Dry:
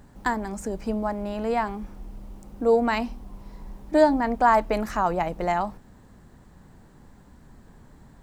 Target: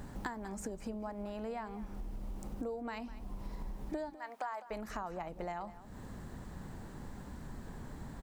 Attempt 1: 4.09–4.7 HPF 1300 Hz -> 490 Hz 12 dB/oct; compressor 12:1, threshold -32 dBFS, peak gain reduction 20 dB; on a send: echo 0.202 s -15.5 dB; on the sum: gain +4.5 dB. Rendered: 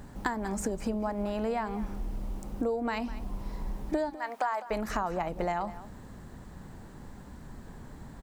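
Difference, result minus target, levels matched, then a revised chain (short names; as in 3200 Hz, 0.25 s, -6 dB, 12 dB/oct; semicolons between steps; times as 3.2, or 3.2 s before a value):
compressor: peak gain reduction -9.5 dB
4.09–4.7 HPF 1300 Hz -> 490 Hz 12 dB/oct; compressor 12:1, threshold -42.5 dBFS, peak gain reduction 30 dB; on a send: echo 0.202 s -15.5 dB; on the sum: gain +4.5 dB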